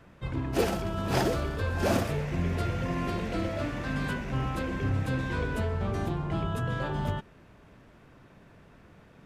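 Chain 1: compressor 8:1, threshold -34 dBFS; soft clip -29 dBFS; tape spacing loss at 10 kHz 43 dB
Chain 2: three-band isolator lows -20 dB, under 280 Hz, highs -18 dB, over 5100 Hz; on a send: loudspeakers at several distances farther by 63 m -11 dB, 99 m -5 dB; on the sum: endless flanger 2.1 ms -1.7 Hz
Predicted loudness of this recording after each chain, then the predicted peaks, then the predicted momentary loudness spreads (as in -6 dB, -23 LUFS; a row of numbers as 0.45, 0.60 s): -41.0, -36.0 LUFS; -30.5, -17.0 dBFS; 17, 7 LU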